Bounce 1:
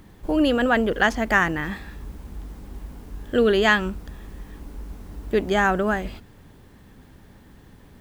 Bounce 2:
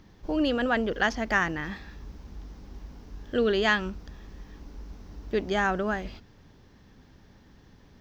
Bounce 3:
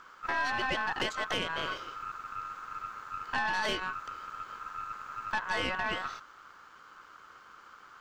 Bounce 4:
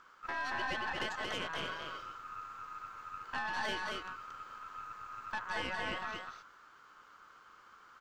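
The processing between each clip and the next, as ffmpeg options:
-af "highshelf=f=7.1k:t=q:w=3:g=-8.5,volume=-6dB"
-af "acompressor=threshold=-29dB:ratio=4,aeval=exprs='val(0)*sin(2*PI*1300*n/s)':c=same,aeval=exprs='(tanh(28.2*val(0)+0.5)-tanh(0.5))/28.2':c=same,volume=6dB"
-af "aecho=1:1:229:0.708,volume=-7dB"

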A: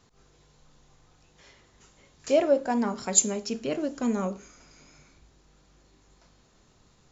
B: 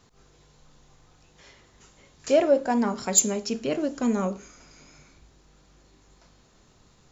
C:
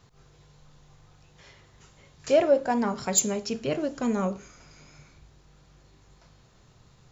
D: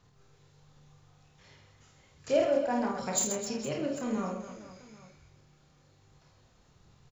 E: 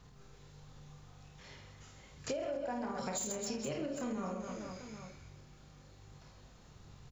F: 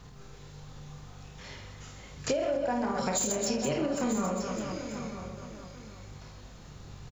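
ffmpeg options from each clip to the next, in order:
-af "acontrast=86,volume=-4.5dB"
-af "equalizer=f=125:t=o:w=1:g=8,equalizer=f=250:t=o:w=1:g=-5,equalizer=f=8k:t=o:w=1:g=-4"
-filter_complex "[0:a]asplit=2[a][b];[b]adelay=28,volume=-5dB[c];[a][c]amix=inputs=2:normalize=0,aphaser=in_gain=1:out_gain=1:delay=4.2:decay=0.24:speed=1.3:type=sinusoidal,aecho=1:1:50|130|258|462.8|790.5:0.631|0.398|0.251|0.158|0.1,volume=-8.5dB"
-af "alimiter=limit=-23.5dB:level=0:latency=1:release=137,acompressor=threshold=-40dB:ratio=5,aeval=exprs='val(0)+0.000562*(sin(2*PI*50*n/s)+sin(2*PI*2*50*n/s)/2+sin(2*PI*3*50*n/s)/3+sin(2*PI*4*50*n/s)/4+sin(2*PI*5*50*n/s)/5)':c=same,volume=4dB"
-af "aecho=1:1:940:0.282,volume=8.5dB"

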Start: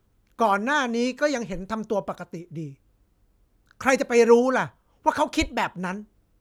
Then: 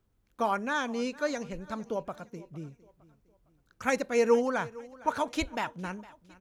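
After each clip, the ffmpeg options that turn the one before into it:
-af "aecho=1:1:458|916|1374:0.0944|0.0378|0.0151,volume=-7.5dB"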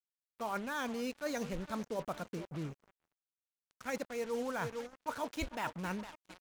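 -af "areverse,acompressor=threshold=-36dB:ratio=12,areverse,acrusher=bits=7:mix=0:aa=0.5,volume=2dB"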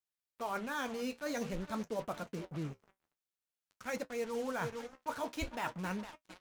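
-af "flanger=delay=8.8:depth=6.2:regen=-54:speed=0.49:shape=sinusoidal,volume=4dB"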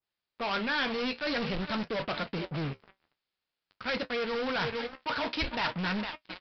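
-af "aresample=11025,asoftclip=type=hard:threshold=-39dB,aresample=44100,adynamicequalizer=threshold=0.00126:dfrequency=1500:dqfactor=0.7:tfrequency=1500:tqfactor=0.7:attack=5:release=100:ratio=0.375:range=4:mode=boostabove:tftype=highshelf,volume=9dB"

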